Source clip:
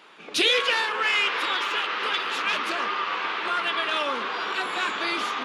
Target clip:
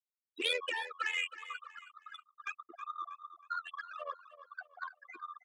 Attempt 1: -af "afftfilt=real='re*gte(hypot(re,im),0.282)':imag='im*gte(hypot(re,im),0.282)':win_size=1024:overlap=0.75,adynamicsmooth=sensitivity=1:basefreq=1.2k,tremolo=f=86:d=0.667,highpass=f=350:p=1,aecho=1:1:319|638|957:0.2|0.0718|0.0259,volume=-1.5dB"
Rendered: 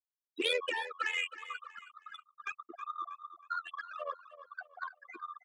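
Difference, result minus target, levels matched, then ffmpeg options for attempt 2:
250 Hz band +5.0 dB
-af "afftfilt=real='re*gte(hypot(re,im),0.282)':imag='im*gte(hypot(re,im),0.282)':win_size=1024:overlap=0.75,adynamicsmooth=sensitivity=1:basefreq=1.2k,tremolo=f=86:d=0.667,highpass=f=910:p=1,aecho=1:1:319|638|957:0.2|0.0718|0.0259,volume=-1.5dB"

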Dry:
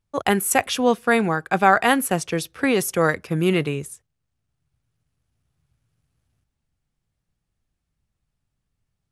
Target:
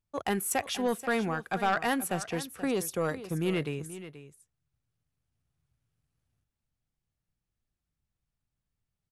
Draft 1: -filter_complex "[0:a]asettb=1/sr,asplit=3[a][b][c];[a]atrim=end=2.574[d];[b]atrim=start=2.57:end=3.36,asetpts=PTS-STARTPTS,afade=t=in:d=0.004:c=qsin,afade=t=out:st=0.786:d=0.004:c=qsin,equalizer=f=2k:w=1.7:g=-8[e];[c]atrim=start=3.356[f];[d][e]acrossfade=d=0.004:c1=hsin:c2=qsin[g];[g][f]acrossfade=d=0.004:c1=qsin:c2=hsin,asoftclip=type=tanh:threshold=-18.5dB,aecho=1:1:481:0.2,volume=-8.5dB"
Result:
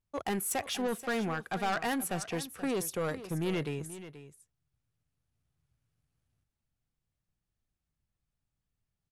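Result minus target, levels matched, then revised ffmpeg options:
soft clip: distortion +6 dB
-filter_complex "[0:a]asettb=1/sr,asplit=3[a][b][c];[a]atrim=end=2.574[d];[b]atrim=start=2.57:end=3.36,asetpts=PTS-STARTPTS,afade=t=in:d=0.004:c=qsin,afade=t=out:st=0.786:d=0.004:c=qsin,equalizer=f=2k:w=1.7:g=-8[e];[c]atrim=start=3.356[f];[d][e]acrossfade=d=0.004:c1=hsin:c2=qsin[g];[g][f]acrossfade=d=0.004:c1=qsin:c2=hsin,asoftclip=type=tanh:threshold=-11dB,aecho=1:1:481:0.2,volume=-8.5dB"

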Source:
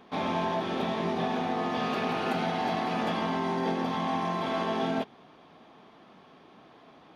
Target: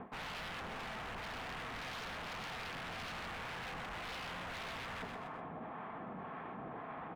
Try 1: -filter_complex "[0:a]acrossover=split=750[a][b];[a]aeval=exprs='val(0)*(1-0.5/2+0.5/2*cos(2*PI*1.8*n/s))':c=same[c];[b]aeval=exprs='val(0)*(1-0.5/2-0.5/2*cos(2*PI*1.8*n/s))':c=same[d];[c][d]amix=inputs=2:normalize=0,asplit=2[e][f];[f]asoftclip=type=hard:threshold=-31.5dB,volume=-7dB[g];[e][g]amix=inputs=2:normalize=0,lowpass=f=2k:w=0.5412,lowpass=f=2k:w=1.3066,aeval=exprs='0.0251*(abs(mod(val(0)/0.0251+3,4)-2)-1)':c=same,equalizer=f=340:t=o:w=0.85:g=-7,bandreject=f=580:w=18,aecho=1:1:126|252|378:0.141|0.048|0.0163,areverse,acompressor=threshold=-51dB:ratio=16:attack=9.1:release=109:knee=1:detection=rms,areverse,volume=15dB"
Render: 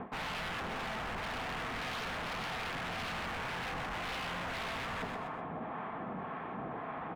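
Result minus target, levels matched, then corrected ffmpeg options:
hard clip: distortion +30 dB; compressor: peak gain reduction -6 dB
-filter_complex "[0:a]acrossover=split=750[a][b];[a]aeval=exprs='val(0)*(1-0.5/2+0.5/2*cos(2*PI*1.8*n/s))':c=same[c];[b]aeval=exprs='val(0)*(1-0.5/2-0.5/2*cos(2*PI*1.8*n/s))':c=same[d];[c][d]amix=inputs=2:normalize=0,asplit=2[e][f];[f]asoftclip=type=hard:threshold=-21dB,volume=-7dB[g];[e][g]amix=inputs=2:normalize=0,lowpass=f=2k:w=0.5412,lowpass=f=2k:w=1.3066,aeval=exprs='0.0251*(abs(mod(val(0)/0.0251+3,4)-2)-1)':c=same,equalizer=f=340:t=o:w=0.85:g=-7,bandreject=f=580:w=18,aecho=1:1:126|252|378:0.141|0.048|0.0163,areverse,acompressor=threshold=-57dB:ratio=16:attack=9.1:release=109:knee=1:detection=rms,areverse,volume=15dB"

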